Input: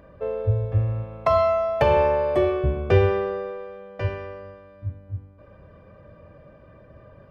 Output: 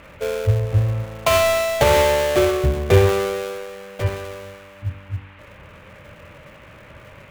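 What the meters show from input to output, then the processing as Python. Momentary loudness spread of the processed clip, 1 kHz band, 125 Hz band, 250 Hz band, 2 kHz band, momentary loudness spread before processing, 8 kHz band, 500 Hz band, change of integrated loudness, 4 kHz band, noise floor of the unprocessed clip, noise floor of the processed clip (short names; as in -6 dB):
17 LU, +2.0 dB, +4.0 dB, +3.5 dB, +8.5 dB, 18 LU, n/a, +3.0 dB, +3.5 dB, +14.5 dB, -50 dBFS, -45 dBFS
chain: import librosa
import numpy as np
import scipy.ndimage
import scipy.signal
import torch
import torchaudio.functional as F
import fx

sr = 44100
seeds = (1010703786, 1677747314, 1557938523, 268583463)

y = fx.dead_time(x, sr, dead_ms=0.24)
y = fx.dmg_noise_band(y, sr, seeds[0], low_hz=780.0, high_hz=2700.0, level_db=-53.0)
y = F.gain(torch.from_numpy(y), 4.0).numpy()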